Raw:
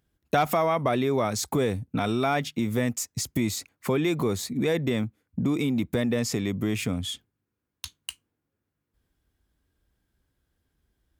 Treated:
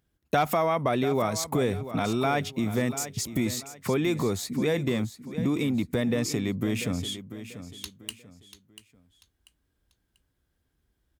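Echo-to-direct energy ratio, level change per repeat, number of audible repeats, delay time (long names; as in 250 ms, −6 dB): −12.0 dB, −10.0 dB, 3, 690 ms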